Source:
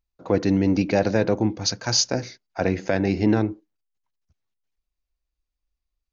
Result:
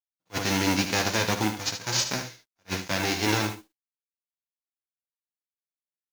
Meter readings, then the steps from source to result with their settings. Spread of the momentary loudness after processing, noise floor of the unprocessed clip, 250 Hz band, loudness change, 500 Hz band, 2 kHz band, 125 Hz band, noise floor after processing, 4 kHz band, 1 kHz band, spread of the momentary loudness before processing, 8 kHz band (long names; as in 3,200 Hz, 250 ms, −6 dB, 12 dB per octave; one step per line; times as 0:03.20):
10 LU, −84 dBFS, −8.0 dB, −4.0 dB, −9.0 dB, +3.0 dB, −6.0 dB, below −85 dBFS, 0.0 dB, +1.0 dB, 6 LU, can't be measured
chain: spectral envelope flattened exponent 0.3
noise gate with hold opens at −45 dBFS
flanger 0.48 Hz, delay 4.4 ms, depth 8.7 ms, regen −38%
log-companded quantiser 6 bits
on a send: single-tap delay 75 ms −9 dB
on the sum: level that may rise only so fast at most 520 dB per second
level −1.5 dB